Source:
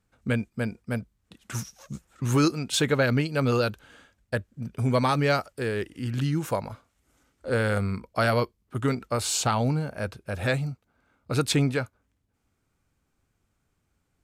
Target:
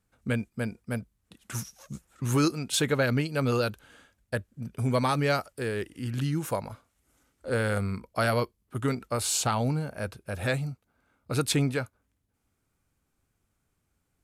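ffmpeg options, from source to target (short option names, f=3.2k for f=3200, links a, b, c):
-af "equalizer=f=11k:t=o:w=0.67:g=7,volume=-2.5dB"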